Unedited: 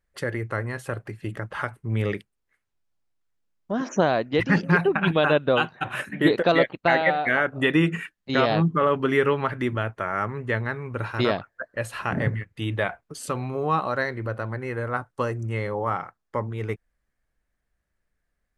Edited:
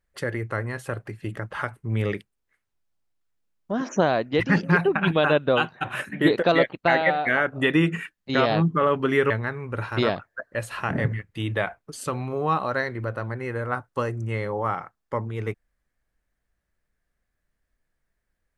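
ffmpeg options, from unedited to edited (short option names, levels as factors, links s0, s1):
-filter_complex "[0:a]asplit=2[s0][s1];[s0]atrim=end=9.302[s2];[s1]atrim=start=10.518[s3];[s2][s3]acrossfade=d=0.004:c1=hsin:c2=hsin"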